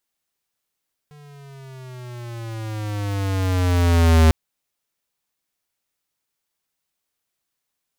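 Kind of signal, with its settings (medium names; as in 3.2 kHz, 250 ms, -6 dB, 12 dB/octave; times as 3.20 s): gliding synth tone square, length 3.20 s, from 149 Hz, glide -11 st, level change +33.5 dB, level -11.5 dB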